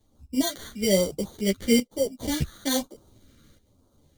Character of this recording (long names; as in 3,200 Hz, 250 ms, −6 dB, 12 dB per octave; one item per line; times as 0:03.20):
aliases and images of a low sample rate 2,600 Hz, jitter 0%
phaser sweep stages 2, 1.1 Hz, lowest notch 800–1,900 Hz
tremolo saw up 0.56 Hz, depth 75%
a shimmering, thickened sound